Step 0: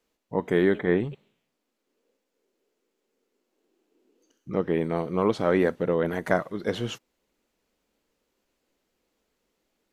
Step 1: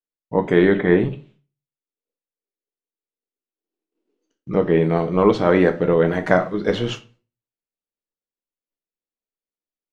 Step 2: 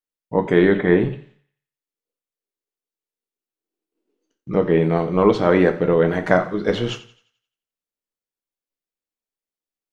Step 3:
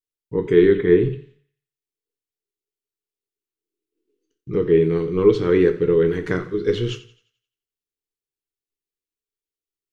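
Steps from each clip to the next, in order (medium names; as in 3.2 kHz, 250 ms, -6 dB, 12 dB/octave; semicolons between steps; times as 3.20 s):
expander -56 dBFS; low-pass 5.5 kHz 12 dB/octave; reverberation RT60 0.35 s, pre-delay 7 ms, DRR 6 dB; trim +6.5 dB
thinning echo 87 ms, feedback 45%, high-pass 490 Hz, level -17 dB
FFT filter 130 Hz 0 dB, 210 Hz -10 dB, 430 Hz +2 dB, 630 Hz -28 dB, 1.1 kHz -12 dB, 2.9 kHz -5 dB; trim +2.5 dB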